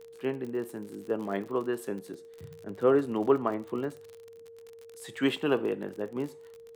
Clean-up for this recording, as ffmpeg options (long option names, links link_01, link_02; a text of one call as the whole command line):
ffmpeg -i in.wav -af "adeclick=threshold=4,bandreject=frequency=460:width=30" out.wav